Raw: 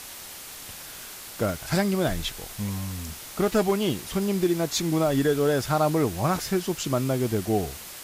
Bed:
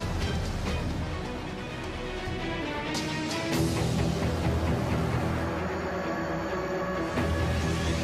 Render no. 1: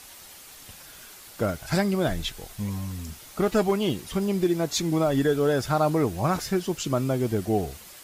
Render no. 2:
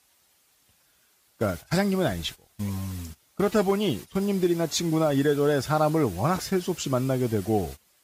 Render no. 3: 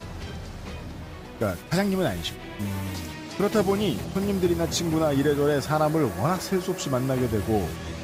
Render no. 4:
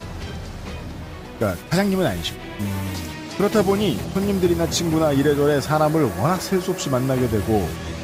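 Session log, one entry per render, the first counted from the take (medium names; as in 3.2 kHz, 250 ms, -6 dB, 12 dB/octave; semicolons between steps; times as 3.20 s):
noise reduction 7 dB, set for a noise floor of -41 dBFS
high-pass 44 Hz 24 dB/octave; gate -35 dBFS, range -18 dB
add bed -6.5 dB
trim +4.5 dB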